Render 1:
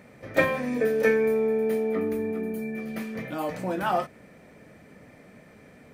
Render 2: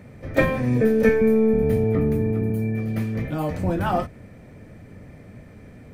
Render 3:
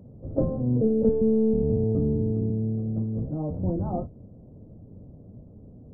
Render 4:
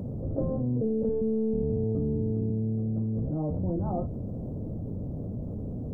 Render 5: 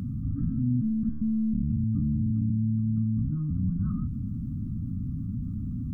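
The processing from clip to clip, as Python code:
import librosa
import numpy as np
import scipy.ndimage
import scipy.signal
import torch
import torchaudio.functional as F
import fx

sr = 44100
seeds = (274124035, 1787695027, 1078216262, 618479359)

y1 = fx.octave_divider(x, sr, octaves=1, level_db=-1.0)
y1 = fx.low_shelf(y1, sr, hz=320.0, db=9.0)
y2 = scipy.ndimage.gaussian_filter1d(y1, 13.0, mode='constant')
y2 = F.gain(torch.from_numpy(y2), -2.0).numpy()
y3 = fx.env_flatten(y2, sr, amount_pct=70)
y3 = F.gain(torch.from_numpy(y3), -8.5).numpy()
y4 = fx.brickwall_bandstop(y3, sr, low_hz=290.0, high_hz=1100.0)
y4 = F.gain(torch.from_numpy(y4), 3.0).numpy()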